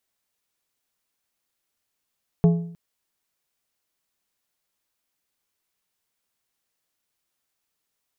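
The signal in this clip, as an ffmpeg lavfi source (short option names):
-f lavfi -i "aevalsrc='0.299*pow(10,-3*t/0.61)*sin(2*PI*169*t)+0.106*pow(10,-3*t/0.463)*sin(2*PI*422.5*t)+0.0376*pow(10,-3*t/0.402)*sin(2*PI*676*t)+0.0133*pow(10,-3*t/0.376)*sin(2*PI*845*t)+0.00473*pow(10,-3*t/0.348)*sin(2*PI*1098.5*t)':d=0.31:s=44100"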